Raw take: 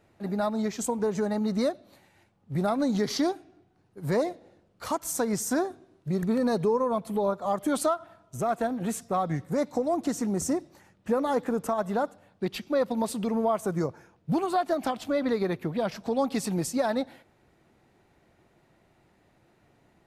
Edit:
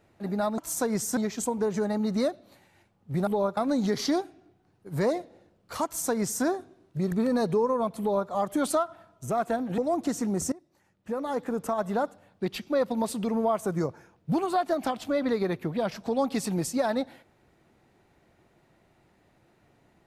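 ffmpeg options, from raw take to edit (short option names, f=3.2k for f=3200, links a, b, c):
-filter_complex "[0:a]asplit=7[a][b][c][d][e][f][g];[a]atrim=end=0.582[h];[b]atrim=start=4.958:end=5.552[i];[c]atrim=start=0.578:end=2.682[j];[d]atrim=start=7.108:end=7.412[k];[e]atrim=start=2.678:end=8.892[l];[f]atrim=start=9.778:end=10.52,asetpts=PTS-STARTPTS,afade=t=out:st=0.738:d=0.004:c=hsin:silence=0.0707946[m];[g]atrim=start=10.52,asetpts=PTS-STARTPTS,afade=t=in:d=1.32:silence=0.0707946[n];[h][i]acrossfade=d=0.004:c1=hsin:c2=hsin[o];[o][j]acrossfade=d=0.004:c1=hsin:c2=hsin[p];[p][k]acrossfade=d=0.004:c1=hsin:c2=hsin[q];[q][l]acrossfade=d=0.004:c1=hsin:c2=hsin[r];[m][n]concat=n=2:v=0:a=1[s];[r][s]acrossfade=d=0.004:c1=hsin:c2=hsin"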